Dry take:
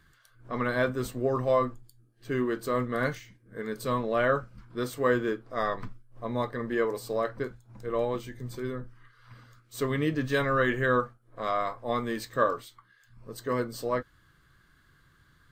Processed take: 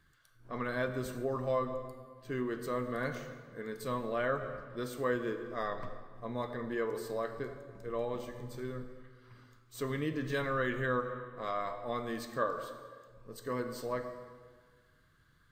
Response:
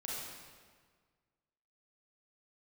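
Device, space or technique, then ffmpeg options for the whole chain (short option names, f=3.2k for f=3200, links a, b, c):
ducked reverb: -filter_complex "[0:a]asplit=3[a][b][c];[1:a]atrim=start_sample=2205[d];[b][d]afir=irnorm=-1:irlink=0[e];[c]apad=whole_len=684230[f];[e][f]sidechaincompress=threshold=-28dB:ratio=8:attack=9.4:release=141,volume=-5.5dB[g];[a][g]amix=inputs=2:normalize=0,volume=-8.5dB"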